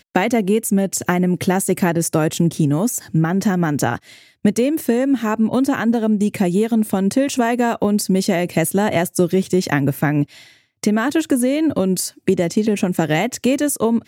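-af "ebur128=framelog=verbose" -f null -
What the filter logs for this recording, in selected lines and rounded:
Integrated loudness:
  I:         -18.4 LUFS
  Threshold: -28.5 LUFS
Loudness range:
  LRA:         1.2 LU
  Threshold: -38.5 LUFS
  LRA low:   -19.1 LUFS
  LRA high:  -17.9 LUFS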